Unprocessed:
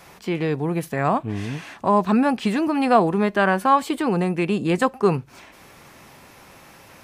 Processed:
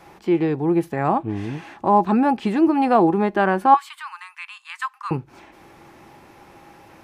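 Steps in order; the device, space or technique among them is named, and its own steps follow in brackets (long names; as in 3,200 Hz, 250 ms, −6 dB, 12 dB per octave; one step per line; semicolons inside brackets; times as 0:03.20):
0:03.74–0:05.11: Butterworth high-pass 1,000 Hz 72 dB per octave
inside a helmet (high-shelf EQ 3,400 Hz −9 dB; hollow resonant body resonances 340/820 Hz, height 11 dB, ringing for 70 ms)
level −1 dB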